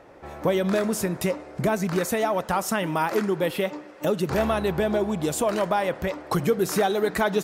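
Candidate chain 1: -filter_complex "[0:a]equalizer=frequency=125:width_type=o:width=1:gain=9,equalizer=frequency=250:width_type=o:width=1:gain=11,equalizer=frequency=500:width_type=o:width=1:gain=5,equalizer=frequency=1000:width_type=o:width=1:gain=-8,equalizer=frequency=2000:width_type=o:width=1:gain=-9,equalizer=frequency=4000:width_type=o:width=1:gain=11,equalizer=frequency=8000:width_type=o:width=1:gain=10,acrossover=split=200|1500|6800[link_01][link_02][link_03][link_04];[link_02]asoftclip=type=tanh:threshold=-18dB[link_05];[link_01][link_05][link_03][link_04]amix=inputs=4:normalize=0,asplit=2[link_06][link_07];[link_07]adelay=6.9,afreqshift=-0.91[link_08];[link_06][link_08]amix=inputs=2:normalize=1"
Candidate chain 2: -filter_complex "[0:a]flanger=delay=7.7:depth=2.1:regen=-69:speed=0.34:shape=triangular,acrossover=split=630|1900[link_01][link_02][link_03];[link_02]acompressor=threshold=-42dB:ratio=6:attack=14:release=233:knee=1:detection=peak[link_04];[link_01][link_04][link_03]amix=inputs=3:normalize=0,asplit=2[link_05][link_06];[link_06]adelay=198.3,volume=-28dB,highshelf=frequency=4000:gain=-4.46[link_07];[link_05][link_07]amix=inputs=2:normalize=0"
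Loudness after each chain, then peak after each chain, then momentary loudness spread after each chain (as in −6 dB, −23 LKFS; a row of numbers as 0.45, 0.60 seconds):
−23.0, −31.0 LKFS; −8.5, −15.0 dBFS; 7, 5 LU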